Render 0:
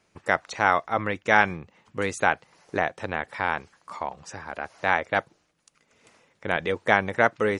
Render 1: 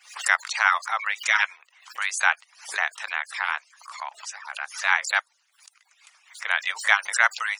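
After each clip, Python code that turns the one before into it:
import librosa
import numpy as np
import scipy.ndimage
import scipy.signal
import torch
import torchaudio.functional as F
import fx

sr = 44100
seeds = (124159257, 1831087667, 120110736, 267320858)

y = fx.hpss_only(x, sr, part='percussive')
y = scipy.signal.sosfilt(scipy.signal.bessel(6, 1500.0, 'highpass', norm='mag', fs=sr, output='sos'), y)
y = fx.pre_swell(y, sr, db_per_s=140.0)
y = y * 10.0 ** (7.0 / 20.0)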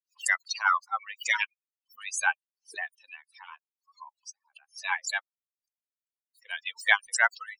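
y = fx.bin_expand(x, sr, power=3.0)
y = y * 10.0 ** (2.0 / 20.0)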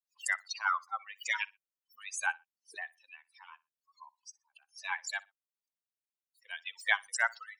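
y = fx.echo_feedback(x, sr, ms=61, feedback_pct=23, wet_db=-23)
y = y * 10.0 ** (-6.5 / 20.0)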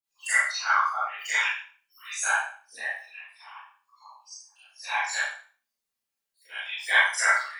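y = fx.room_flutter(x, sr, wall_m=3.1, rt60_s=0.35)
y = fx.whisperise(y, sr, seeds[0])
y = fx.rev_schroeder(y, sr, rt60_s=0.38, comb_ms=28, drr_db=-10.0)
y = y * 10.0 ** (-4.0 / 20.0)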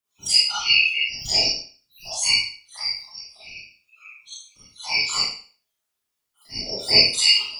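y = fx.band_shuffle(x, sr, order='3142')
y = y * 10.0 ** (5.5 / 20.0)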